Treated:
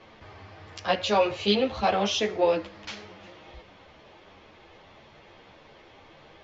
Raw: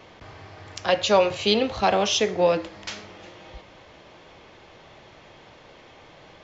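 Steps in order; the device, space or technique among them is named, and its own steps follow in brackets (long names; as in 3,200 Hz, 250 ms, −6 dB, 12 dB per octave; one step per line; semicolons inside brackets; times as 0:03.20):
string-machine ensemble chorus (string-ensemble chorus; low-pass filter 5,400 Hz 12 dB per octave)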